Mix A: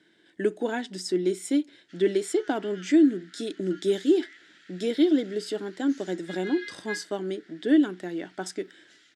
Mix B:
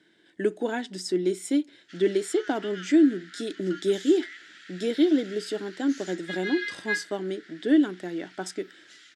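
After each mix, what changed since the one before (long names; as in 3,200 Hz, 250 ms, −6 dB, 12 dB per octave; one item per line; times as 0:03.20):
background +7.0 dB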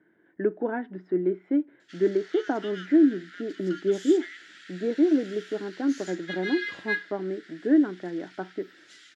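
speech: add low-pass filter 1,700 Hz 24 dB per octave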